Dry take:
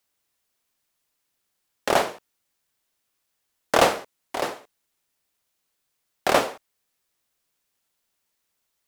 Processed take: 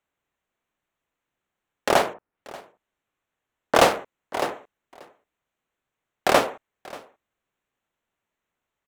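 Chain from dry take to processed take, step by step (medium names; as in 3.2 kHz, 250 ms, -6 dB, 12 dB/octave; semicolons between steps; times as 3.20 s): local Wiener filter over 9 samples; 2.13–3.75 s: low-pass that closes with the level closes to 1.5 kHz, closed at -50.5 dBFS; delay 585 ms -21 dB; trim +1.5 dB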